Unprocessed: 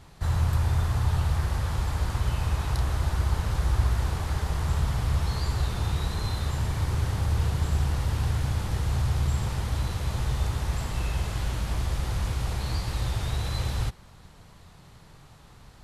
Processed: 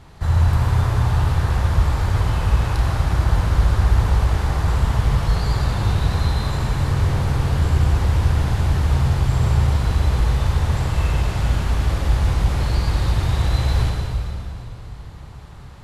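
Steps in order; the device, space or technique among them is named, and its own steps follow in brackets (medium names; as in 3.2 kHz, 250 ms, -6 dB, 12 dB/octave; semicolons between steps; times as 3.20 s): swimming-pool hall (reverberation RT60 2.8 s, pre-delay 47 ms, DRR -0.5 dB; treble shelf 4.2 kHz -7 dB); trim +5.5 dB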